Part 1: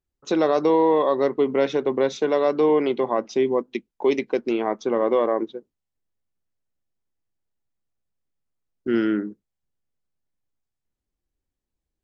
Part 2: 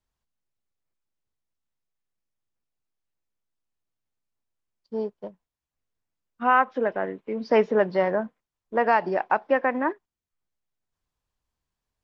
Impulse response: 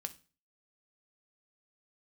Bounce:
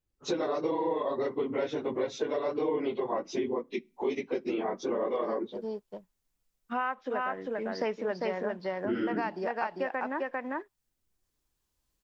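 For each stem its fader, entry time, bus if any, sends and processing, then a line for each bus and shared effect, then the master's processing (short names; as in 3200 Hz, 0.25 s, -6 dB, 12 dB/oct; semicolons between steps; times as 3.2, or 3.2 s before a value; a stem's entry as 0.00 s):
-1.0 dB, 0.00 s, send -11.5 dB, no echo send, phase scrambler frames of 50 ms
-3.0 dB, 0.30 s, no send, echo send -3 dB, high shelf 3700 Hz +11.5 dB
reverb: on, RT60 0.35 s, pre-delay 3 ms
echo: echo 0.398 s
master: compressor 3:1, threshold -31 dBFS, peak gain reduction 13.5 dB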